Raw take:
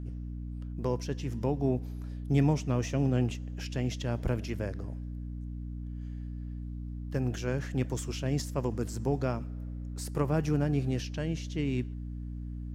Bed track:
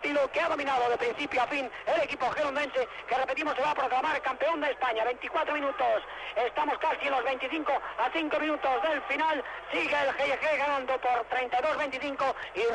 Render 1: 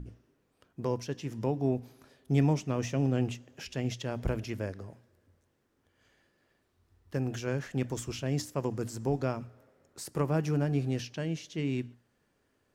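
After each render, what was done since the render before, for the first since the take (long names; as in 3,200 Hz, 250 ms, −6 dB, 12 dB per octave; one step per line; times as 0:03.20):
mains-hum notches 60/120/180/240/300 Hz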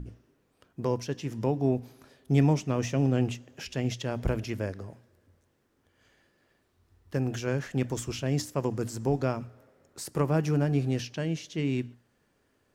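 level +3 dB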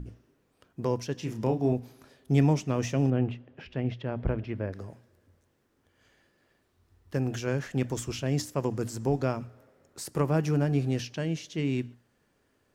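0:01.14–0:01.73: double-tracking delay 32 ms −6.5 dB
0:03.10–0:04.73: high-frequency loss of the air 400 metres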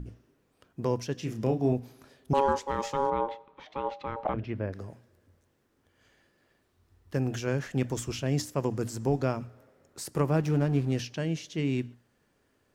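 0:01.14–0:01.59: notch filter 920 Hz, Q 5.2
0:02.33–0:04.34: ring modulation 690 Hz
0:10.36–0:10.92: slack as between gear wheels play −37 dBFS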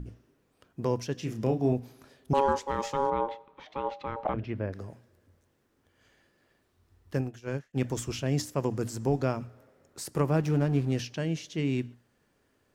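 0:07.21–0:07.80: expander for the loud parts 2.5 to 1, over −47 dBFS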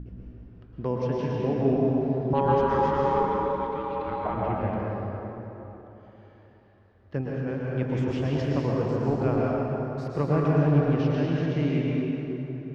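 high-frequency loss of the air 280 metres
dense smooth reverb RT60 3.6 s, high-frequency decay 0.6×, pre-delay 100 ms, DRR −4.5 dB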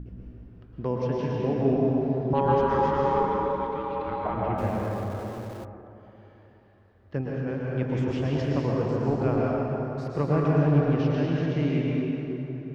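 0:04.58–0:05.65: converter with a step at zero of −40.5 dBFS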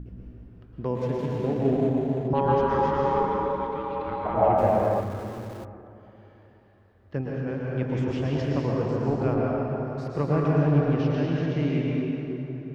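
0:00.95–0:02.28: running median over 25 samples
0:04.34–0:05.01: parametric band 660 Hz +12 dB 0.96 octaves
0:09.33–0:09.86: low-pass filter 2,900 Hz → 4,200 Hz 6 dB per octave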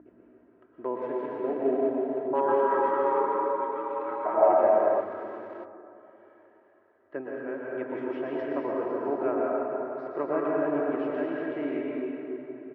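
Chebyshev band-pass filter 400–1,700 Hz, order 2
comb filter 3.1 ms, depth 49%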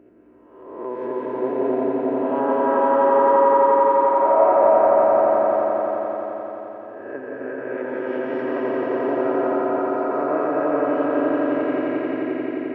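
peak hold with a rise ahead of every peak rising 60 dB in 1.03 s
echo that builds up and dies away 87 ms, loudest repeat 5, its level −6 dB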